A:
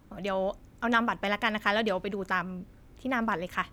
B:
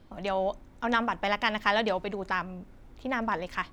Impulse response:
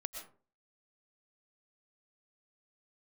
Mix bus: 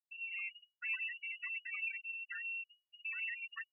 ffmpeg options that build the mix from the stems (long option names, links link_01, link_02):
-filter_complex "[0:a]aeval=exprs='(mod(15.8*val(0)+1,2)-1)/15.8':channel_layout=same,volume=-1.5dB[link_01];[1:a]equalizer=frequency=5200:width_type=o:width=0.96:gain=-13,acrossover=split=330[link_02][link_03];[link_03]acompressor=threshold=-38dB:ratio=8[link_04];[link_02][link_04]amix=inputs=2:normalize=0,volume=-5dB,asplit=2[link_05][link_06];[link_06]apad=whole_len=164374[link_07];[link_01][link_07]sidechaincompress=threshold=-46dB:ratio=16:attack=16:release=175[link_08];[link_08][link_05]amix=inputs=2:normalize=0,afftfilt=real='re*gte(hypot(re,im),0.0447)':imag='im*gte(hypot(re,im),0.0447)':win_size=1024:overlap=0.75,lowpass=frequency=2500:width_type=q:width=0.5098,lowpass=frequency=2500:width_type=q:width=0.6013,lowpass=frequency=2500:width_type=q:width=0.9,lowpass=frequency=2500:width_type=q:width=2.563,afreqshift=-2900"